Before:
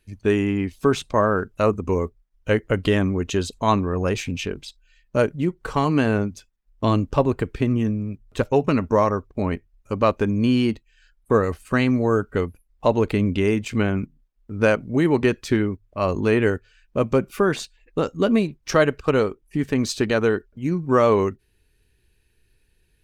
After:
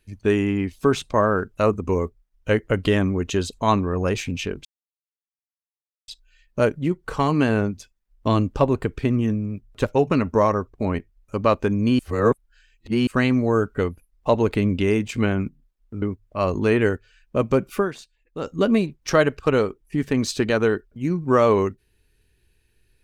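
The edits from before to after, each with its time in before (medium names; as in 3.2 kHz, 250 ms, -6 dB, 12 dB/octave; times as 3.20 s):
4.65 s: insert silence 1.43 s
10.56–11.64 s: reverse
14.59–15.63 s: delete
17.39–18.11 s: dip -10.5 dB, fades 0.12 s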